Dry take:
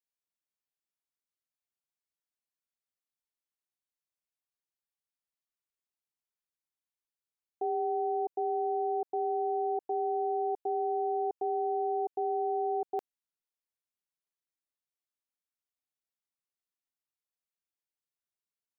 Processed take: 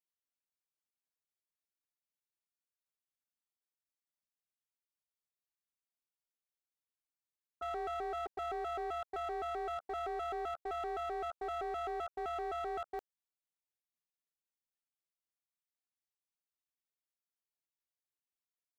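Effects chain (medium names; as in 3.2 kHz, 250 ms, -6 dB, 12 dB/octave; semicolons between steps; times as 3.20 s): pitch shift switched off and on +9.5 st, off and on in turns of 129 ms; overload inside the chain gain 30 dB; trim -5.5 dB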